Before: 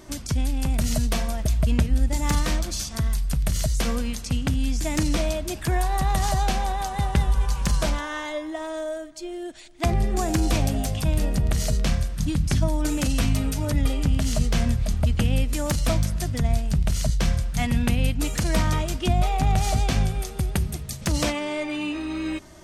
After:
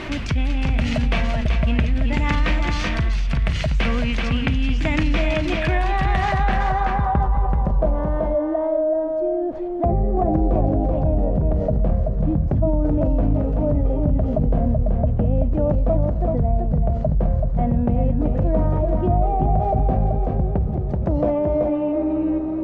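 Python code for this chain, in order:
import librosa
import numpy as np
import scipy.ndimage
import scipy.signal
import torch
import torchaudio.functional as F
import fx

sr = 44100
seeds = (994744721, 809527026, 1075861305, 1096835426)

p1 = fx.high_shelf(x, sr, hz=12000.0, db=-4.0)
p2 = fx.quant_dither(p1, sr, seeds[0], bits=6, dither='triangular')
p3 = p1 + F.gain(torch.from_numpy(p2), -11.5).numpy()
p4 = fx.filter_sweep_lowpass(p3, sr, from_hz=2500.0, to_hz=620.0, start_s=6.13, end_s=7.65, q=2.2)
p5 = p4 + 10.0 ** (-5.5 / 20.0) * np.pad(p4, (int(381 * sr / 1000.0), 0))[:len(p4)]
p6 = fx.env_flatten(p5, sr, amount_pct=50)
y = F.gain(torch.from_numpy(p6), -2.5).numpy()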